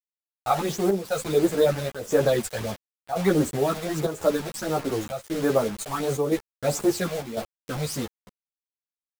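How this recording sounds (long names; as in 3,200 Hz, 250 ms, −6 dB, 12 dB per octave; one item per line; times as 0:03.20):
phaser sweep stages 12, 1.5 Hz, lowest notch 300–4,900 Hz
a quantiser's noise floor 6 bits, dither none
chopped level 0.95 Hz, depth 60%, duty 85%
a shimmering, thickened sound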